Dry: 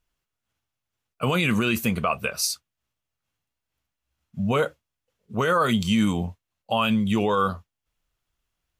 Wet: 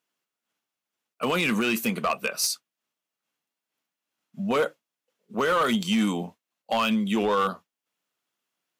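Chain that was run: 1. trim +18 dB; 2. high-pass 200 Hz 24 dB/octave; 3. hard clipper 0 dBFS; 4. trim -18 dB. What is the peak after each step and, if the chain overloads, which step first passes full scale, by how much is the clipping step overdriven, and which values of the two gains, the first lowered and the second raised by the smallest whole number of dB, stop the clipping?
+6.0 dBFS, +7.5 dBFS, 0.0 dBFS, -18.0 dBFS; step 1, 7.5 dB; step 1 +10 dB, step 4 -10 dB

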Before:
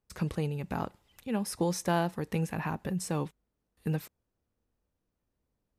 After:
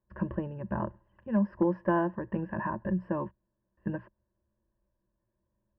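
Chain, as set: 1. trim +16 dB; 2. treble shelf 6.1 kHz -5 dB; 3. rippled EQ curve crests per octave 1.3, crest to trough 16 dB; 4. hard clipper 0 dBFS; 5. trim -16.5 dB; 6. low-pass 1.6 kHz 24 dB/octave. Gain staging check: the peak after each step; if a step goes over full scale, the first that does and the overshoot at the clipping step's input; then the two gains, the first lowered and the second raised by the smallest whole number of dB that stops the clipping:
+1.5 dBFS, +1.5 dBFS, +5.0 dBFS, 0.0 dBFS, -16.5 dBFS, -16.0 dBFS; step 1, 5.0 dB; step 1 +11 dB, step 5 -11.5 dB

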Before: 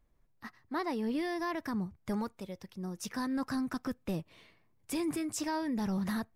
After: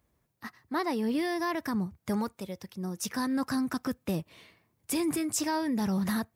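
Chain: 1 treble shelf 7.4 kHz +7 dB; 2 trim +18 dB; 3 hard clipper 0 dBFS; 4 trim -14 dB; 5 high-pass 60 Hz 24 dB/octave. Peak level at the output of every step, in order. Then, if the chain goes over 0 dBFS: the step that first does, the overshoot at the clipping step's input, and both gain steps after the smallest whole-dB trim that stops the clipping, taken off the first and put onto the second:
-22.0 dBFS, -4.0 dBFS, -4.0 dBFS, -18.0 dBFS, -18.0 dBFS; nothing clips

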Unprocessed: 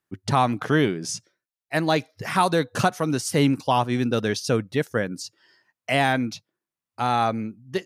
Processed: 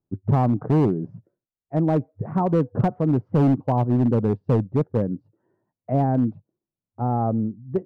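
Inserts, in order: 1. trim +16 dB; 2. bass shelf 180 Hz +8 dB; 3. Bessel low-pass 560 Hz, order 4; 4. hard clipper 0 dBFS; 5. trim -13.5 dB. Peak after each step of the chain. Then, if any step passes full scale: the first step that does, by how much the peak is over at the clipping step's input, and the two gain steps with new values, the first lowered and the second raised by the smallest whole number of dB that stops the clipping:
+8.5 dBFS, +10.5 dBFS, +8.5 dBFS, 0.0 dBFS, -13.5 dBFS; step 1, 8.5 dB; step 1 +7 dB, step 5 -4.5 dB

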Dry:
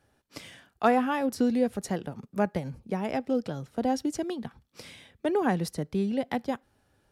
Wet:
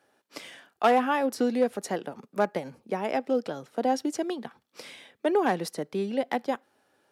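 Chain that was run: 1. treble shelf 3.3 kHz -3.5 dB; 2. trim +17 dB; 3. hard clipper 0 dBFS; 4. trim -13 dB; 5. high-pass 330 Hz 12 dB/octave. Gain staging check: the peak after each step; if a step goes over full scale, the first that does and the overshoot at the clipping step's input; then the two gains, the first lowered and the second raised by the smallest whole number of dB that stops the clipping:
-11.0 dBFS, +6.0 dBFS, 0.0 dBFS, -13.0 dBFS, -9.0 dBFS; step 2, 6.0 dB; step 2 +11 dB, step 4 -7 dB

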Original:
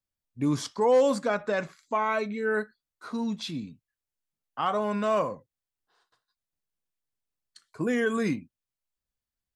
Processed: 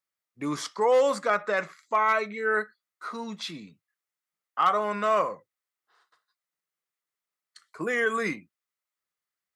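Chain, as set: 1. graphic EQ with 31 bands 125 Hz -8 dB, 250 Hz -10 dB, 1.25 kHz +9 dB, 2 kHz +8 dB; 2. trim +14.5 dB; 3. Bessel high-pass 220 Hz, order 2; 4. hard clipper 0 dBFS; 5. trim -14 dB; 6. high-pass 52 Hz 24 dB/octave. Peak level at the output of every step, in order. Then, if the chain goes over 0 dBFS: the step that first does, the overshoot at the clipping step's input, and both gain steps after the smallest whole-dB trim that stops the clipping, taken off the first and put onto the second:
-11.0 dBFS, +3.5 dBFS, +3.5 dBFS, 0.0 dBFS, -14.0 dBFS, -13.0 dBFS; step 2, 3.5 dB; step 2 +10.5 dB, step 5 -10 dB

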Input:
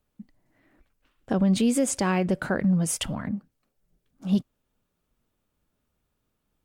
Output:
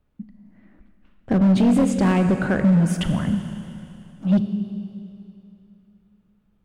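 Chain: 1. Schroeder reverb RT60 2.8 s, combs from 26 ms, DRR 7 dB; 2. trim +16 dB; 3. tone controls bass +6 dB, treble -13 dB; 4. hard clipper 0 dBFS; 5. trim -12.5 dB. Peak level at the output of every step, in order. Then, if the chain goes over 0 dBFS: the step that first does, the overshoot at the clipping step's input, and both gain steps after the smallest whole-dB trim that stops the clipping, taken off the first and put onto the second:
-10.5 dBFS, +5.5 dBFS, +7.5 dBFS, 0.0 dBFS, -12.5 dBFS; step 2, 7.5 dB; step 2 +8 dB, step 5 -4.5 dB

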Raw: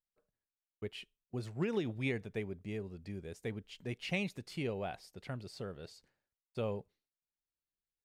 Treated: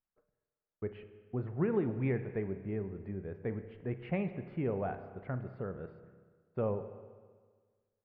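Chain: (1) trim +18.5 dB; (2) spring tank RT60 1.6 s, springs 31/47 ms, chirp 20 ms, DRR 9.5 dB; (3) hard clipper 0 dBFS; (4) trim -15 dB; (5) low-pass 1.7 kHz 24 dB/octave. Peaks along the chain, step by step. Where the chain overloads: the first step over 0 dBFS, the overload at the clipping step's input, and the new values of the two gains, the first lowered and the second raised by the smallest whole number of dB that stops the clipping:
-5.0 dBFS, -3.5 dBFS, -3.5 dBFS, -18.5 dBFS, -19.5 dBFS; nothing clips

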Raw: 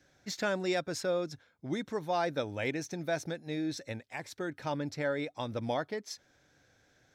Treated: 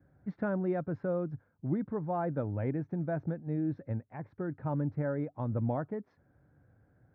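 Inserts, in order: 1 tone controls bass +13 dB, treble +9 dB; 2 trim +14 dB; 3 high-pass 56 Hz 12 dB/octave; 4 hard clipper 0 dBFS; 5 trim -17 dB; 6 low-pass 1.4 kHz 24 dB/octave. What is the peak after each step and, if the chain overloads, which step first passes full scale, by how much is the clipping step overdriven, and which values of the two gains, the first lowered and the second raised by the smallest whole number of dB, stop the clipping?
-15.5 dBFS, -1.5 dBFS, -1.5 dBFS, -1.5 dBFS, -18.5 dBFS, -19.5 dBFS; nothing clips

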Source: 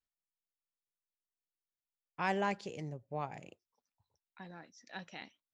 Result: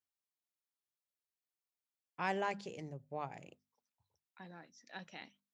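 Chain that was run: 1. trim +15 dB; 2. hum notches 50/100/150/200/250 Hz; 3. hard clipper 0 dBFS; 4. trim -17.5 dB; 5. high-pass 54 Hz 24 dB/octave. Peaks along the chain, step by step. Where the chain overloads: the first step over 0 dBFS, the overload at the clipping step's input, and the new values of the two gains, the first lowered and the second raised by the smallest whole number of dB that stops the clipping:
-3.5 dBFS, -3.5 dBFS, -3.5 dBFS, -21.0 dBFS, -21.0 dBFS; nothing clips

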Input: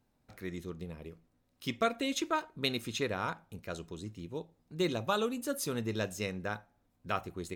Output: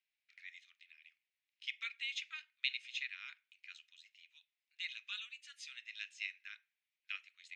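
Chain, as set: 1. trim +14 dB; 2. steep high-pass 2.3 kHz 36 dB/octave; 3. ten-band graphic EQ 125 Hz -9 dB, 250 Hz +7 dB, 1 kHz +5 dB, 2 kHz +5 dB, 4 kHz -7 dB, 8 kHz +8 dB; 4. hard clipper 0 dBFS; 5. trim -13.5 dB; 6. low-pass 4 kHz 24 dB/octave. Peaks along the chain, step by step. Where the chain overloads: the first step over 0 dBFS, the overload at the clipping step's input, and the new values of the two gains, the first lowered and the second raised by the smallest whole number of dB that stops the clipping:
-1.5 dBFS, -4.0 dBFS, -4.0 dBFS, -4.0 dBFS, -17.5 dBFS, -19.5 dBFS; nothing clips

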